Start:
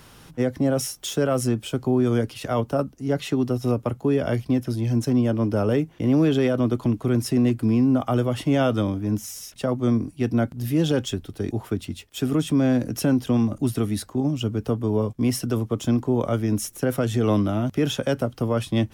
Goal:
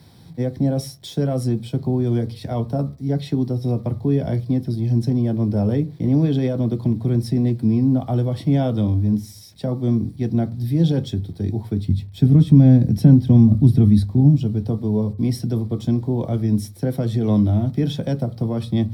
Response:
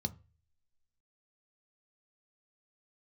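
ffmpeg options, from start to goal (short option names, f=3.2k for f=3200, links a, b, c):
-filter_complex "[0:a]asettb=1/sr,asplit=3[a][b][c];[a]atrim=end=11.824[d];[b]atrim=start=11.82:end=14.36,asetpts=PTS-STARTPTS,afade=t=in:d=0.004:c=qsin,afade=t=out:st=2.536:d=0.004:c=qsin,bass=f=250:g=10,treble=f=4k:g=-3[e];[c]atrim=start=14.356[f];[d][e]acrossfade=d=0.004:c1=hsin:c2=qsin[g];[g][f]acrossfade=d=0.004:c1=qsin:c2=hsin,acrusher=bits=8:mix=0:aa=0.000001[h];[1:a]atrim=start_sample=2205,asetrate=41013,aresample=44100[i];[h][i]afir=irnorm=-1:irlink=0,volume=-6.5dB"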